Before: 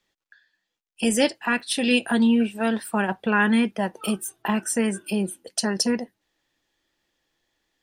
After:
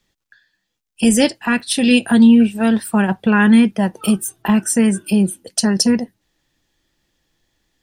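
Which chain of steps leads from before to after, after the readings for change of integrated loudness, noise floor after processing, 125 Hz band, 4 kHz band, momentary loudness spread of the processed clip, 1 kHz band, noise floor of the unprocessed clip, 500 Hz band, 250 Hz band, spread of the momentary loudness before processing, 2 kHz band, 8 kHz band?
+8.0 dB, −76 dBFS, +11.0 dB, +5.5 dB, 8 LU, +3.5 dB, −82 dBFS, +4.5 dB, +10.0 dB, 8 LU, +3.5 dB, +7.5 dB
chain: bass and treble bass +11 dB, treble +4 dB
level +3.5 dB

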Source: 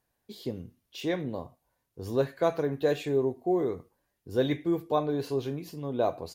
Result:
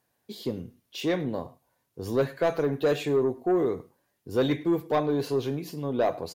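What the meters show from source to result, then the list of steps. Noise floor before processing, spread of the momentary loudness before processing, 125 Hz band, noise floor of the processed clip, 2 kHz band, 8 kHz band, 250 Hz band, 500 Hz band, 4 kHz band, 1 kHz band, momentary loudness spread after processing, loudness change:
−80 dBFS, 13 LU, +2.0 dB, −76 dBFS, +3.5 dB, can't be measured, +3.0 dB, +2.5 dB, +3.5 dB, +2.0 dB, 12 LU, +2.5 dB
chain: high-pass filter 100 Hz
soft clipping −21 dBFS, distortion −15 dB
single-tap delay 103 ms −22 dB
level +4.5 dB

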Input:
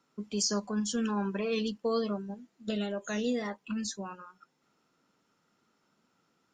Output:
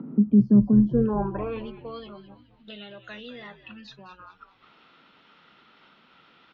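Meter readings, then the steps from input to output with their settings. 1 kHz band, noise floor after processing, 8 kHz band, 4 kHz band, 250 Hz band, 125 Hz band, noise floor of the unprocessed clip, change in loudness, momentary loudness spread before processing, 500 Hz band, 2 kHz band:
+2.0 dB, −59 dBFS, below −30 dB, −8.0 dB, +10.5 dB, +14.0 dB, −75 dBFS, +11.5 dB, 11 LU, +1.5 dB, −3.0 dB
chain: high-pass filter 110 Hz 24 dB per octave
RIAA equalisation playback
in parallel at −2.5 dB: brickwall limiter −24 dBFS, peak gain reduction 8 dB
on the sum: upward compression, threshold −24 dBFS
band-pass filter sweep 230 Hz → 3,500 Hz, 0:00.67–0:02.02
high-frequency loss of the air 300 metres
echo with shifted repeats 211 ms, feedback 41%, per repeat −80 Hz, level −13 dB
level +9 dB

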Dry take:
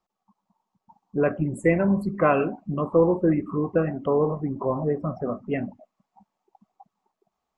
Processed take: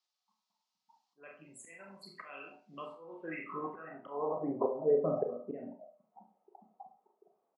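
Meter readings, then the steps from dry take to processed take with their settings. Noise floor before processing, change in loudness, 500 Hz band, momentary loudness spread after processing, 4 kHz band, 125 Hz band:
−83 dBFS, −12.0 dB, −11.5 dB, 23 LU, can't be measured, −22.5 dB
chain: high-pass filter 120 Hz 24 dB per octave
double-tracking delay 42 ms −8 dB
volume swells 636 ms
band-pass filter sweep 4,500 Hz → 490 Hz, 0:02.92–0:04.66
four-comb reverb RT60 0.32 s, combs from 25 ms, DRR 4 dB
level +7.5 dB

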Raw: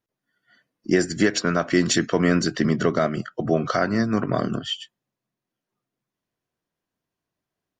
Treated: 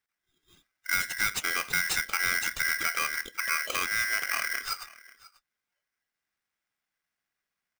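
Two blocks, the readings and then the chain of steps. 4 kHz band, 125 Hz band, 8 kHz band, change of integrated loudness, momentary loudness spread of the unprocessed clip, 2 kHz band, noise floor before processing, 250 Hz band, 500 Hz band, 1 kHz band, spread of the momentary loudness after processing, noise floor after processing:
−3.0 dB, −24.5 dB, −0.5 dB, −5.5 dB, 8 LU, +3.0 dB, below −85 dBFS, −29.0 dB, −23.0 dB, −5.0 dB, 5 LU, below −85 dBFS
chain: dynamic equaliser 1,500 Hz, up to −6 dB, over −38 dBFS, Q 1.9
downward compressor 1.5 to 1, threshold −29 dBFS, peak gain reduction 6 dB
soft clipping −15.5 dBFS, distortion −19 dB
on a send: single-tap delay 539 ms −21 dB
on the sum: ring modulator with a square carrier 1,800 Hz
level −2 dB

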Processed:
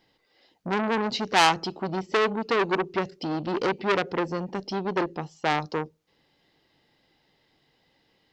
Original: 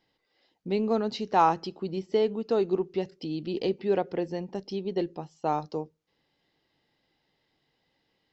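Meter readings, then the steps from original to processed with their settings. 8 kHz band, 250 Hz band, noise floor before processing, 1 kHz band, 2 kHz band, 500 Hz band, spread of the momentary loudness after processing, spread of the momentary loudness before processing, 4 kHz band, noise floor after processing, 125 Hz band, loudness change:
can't be measured, +1.5 dB, −76 dBFS, +3.0 dB, +15.0 dB, 0.0 dB, 10 LU, 11 LU, +11.0 dB, −69 dBFS, +2.5 dB, +2.5 dB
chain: saturating transformer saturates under 3,400 Hz
level +7 dB

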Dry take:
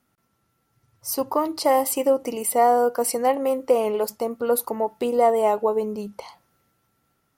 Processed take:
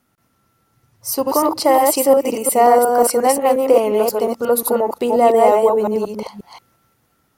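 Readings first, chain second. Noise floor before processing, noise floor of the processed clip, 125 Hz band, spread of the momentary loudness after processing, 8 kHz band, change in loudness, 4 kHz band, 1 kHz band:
−71 dBFS, −64 dBFS, can't be measured, 10 LU, +7.0 dB, +7.0 dB, +7.0 dB, +7.0 dB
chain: delay that plays each chunk backwards 178 ms, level −2 dB
level +5 dB

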